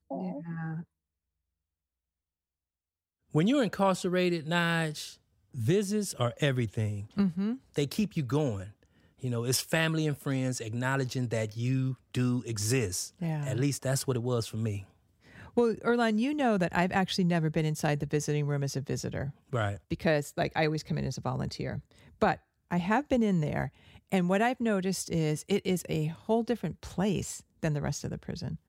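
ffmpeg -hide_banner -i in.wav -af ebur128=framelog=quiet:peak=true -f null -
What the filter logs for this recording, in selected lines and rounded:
Integrated loudness:
  I:         -30.4 LUFS
  Threshold: -40.7 LUFS
Loudness range:
  LRA:         3.0 LU
  Threshold: -50.7 LUFS
  LRA low:   -32.1 LUFS
  LRA high:  -29.1 LUFS
True peak:
  Peak:      -10.7 dBFS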